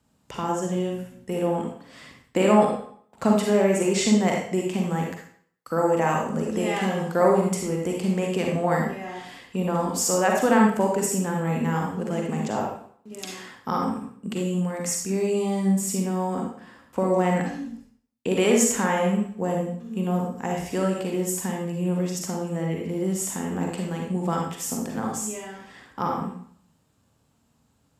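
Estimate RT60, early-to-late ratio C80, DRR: 0.60 s, 6.0 dB, −0.5 dB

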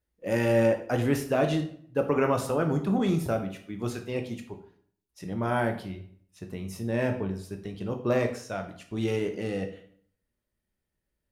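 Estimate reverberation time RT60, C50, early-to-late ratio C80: 0.60 s, 10.0 dB, 13.5 dB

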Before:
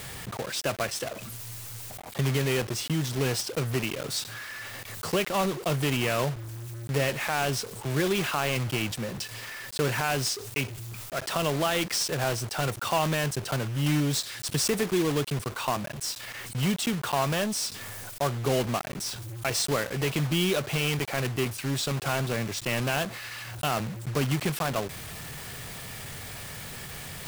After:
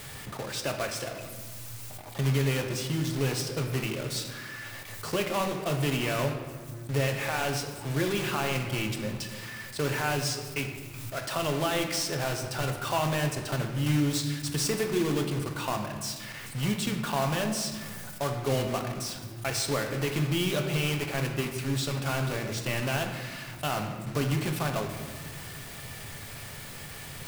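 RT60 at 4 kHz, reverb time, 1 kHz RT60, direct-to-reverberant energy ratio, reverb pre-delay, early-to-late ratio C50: 0.95 s, 1.4 s, 1.4 s, 3.5 dB, 3 ms, 6.5 dB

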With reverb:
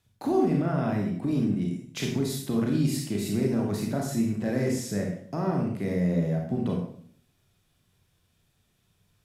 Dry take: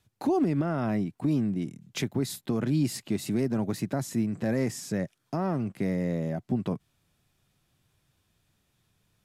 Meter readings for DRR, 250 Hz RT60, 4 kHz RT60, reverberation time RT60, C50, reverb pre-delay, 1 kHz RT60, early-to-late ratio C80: 0.0 dB, 0.75 s, 0.55 s, 0.55 s, 3.0 dB, 28 ms, 0.55 s, 7.0 dB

